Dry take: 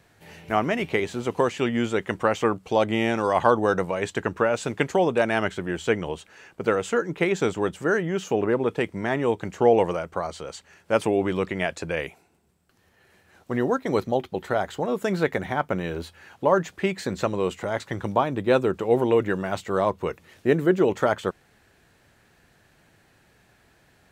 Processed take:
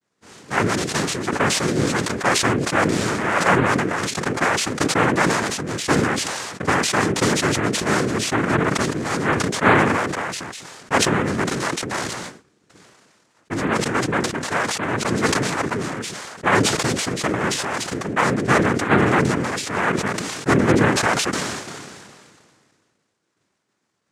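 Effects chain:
cochlear-implant simulation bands 3
downward expander −49 dBFS
level that may fall only so fast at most 29 dB per second
level +1.5 dB

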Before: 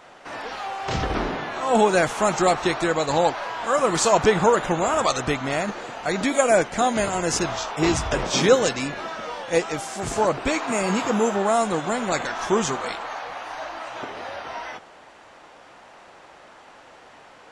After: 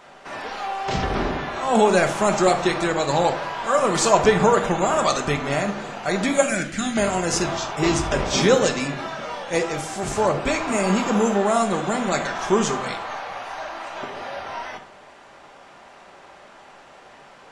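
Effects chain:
0:06.42–0:06.97: flat-topped bell 680 Hz −16 dB
convolution reverb RT60 0.60 s, pre-delay 5 ms, DRR 5.5 dB

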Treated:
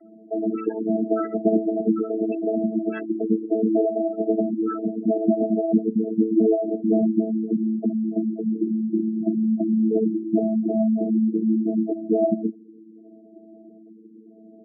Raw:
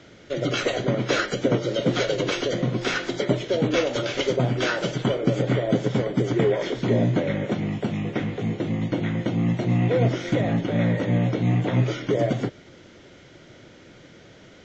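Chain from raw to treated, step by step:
channel vocoder with a chord as carrier bare fifth, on A3
gate on every frequency bin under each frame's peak −10 dB strong
level +2.5 dB

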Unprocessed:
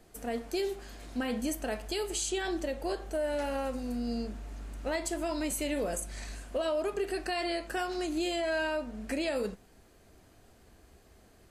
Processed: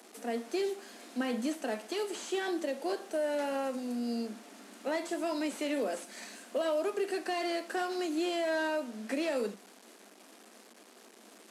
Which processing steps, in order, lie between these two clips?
linear delta modulator 64 kbit/s, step −47.5 dBFS
Butterworth high-pass 200 Hz 96 dB per octave

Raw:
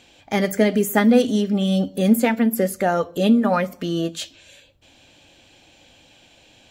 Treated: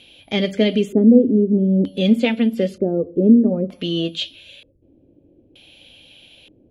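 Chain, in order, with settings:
flat-topped bell 1,200 Hz −9.5 dB
steady tone 11,000 Hz −42 dBFS
auto-filter low-pass square 0.54 Hz 370–3,300 Hz
level +1 dB

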